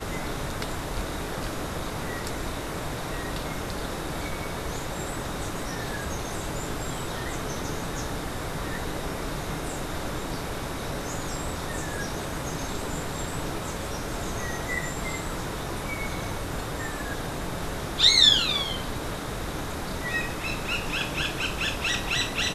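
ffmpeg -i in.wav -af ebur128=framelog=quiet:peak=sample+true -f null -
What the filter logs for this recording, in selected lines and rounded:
Integrated loudness:
  I:         -28.5 LUFS
  Threshold: -38.5 LUFS
Loudness range:
  LRA:         9.7 LU
  Threshold: -48.5 LUFS
  LRA low:   -32.3 LUFS
  LRA high:  -22.6 LUFS
Sample peak:
  Peak:       -5.1 dBFS
True peak:
  Peak:       -5.0 dBFS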